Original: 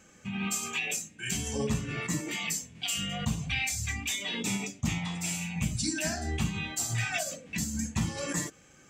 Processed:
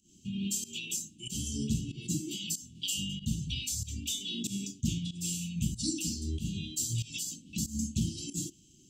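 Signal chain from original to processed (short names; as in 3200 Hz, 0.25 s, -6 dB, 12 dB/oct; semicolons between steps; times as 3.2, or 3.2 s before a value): Chebyshev band-stop 370–2900 Hz, order 5; pump 94 bpm, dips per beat 1, -18 dB, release 0.157 s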